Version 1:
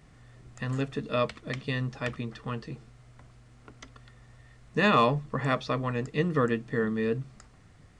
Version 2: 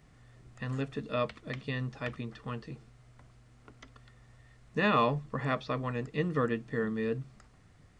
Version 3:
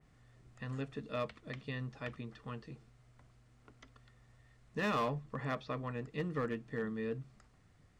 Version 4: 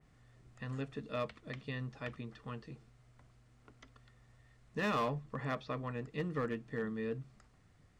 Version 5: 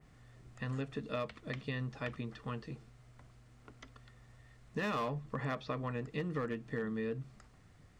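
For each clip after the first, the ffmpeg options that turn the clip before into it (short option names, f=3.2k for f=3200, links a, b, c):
-filter_complex "[0:a]acrossover=split=4500[a][b];[b]acompressor=threshold=-55dB:ratio=4:attack=1:release=60[c];[a][c]amix=inputs=2:normalize=0,volume=-4dB"
-af "volume=23dB,asoftclip=hard,volume=-23dB,adynamicequalizer=threshold=0.00447:dfrequency=3100:dqfactor=0.7:tfrequency=3100:tqfactor=0.7:attack=5:release=100:ratio=0.375:range=2:mode=cutabove:tftype=highshelf,volume=-6dB"
-af anull
-af "acompressor=threshold=-38dB:ratio=5,volume=4.5dB"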